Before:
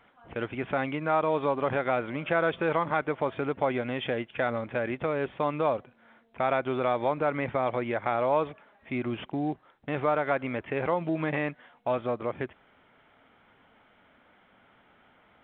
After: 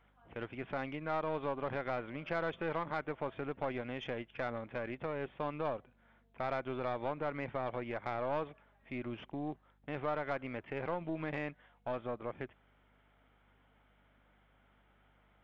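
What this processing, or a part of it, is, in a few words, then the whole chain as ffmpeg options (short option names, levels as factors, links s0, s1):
valve amplifier with mains hum: -af "aeval=exprs='(tanh(7.94*val(0)+0.5)-tanh(0.5))/7.94':c=same,aeval=exprs='val(0)+0.000794*(sin(2*PI*50*n/s)+sin(2*PI*2*50*n/s)/2+sin(2*PI*3*50*n/s)/3+sin(2*PI*4*50*n/s)/4+sin(2*PI*5*50*n/s)/5)':c=same,volume=0.398"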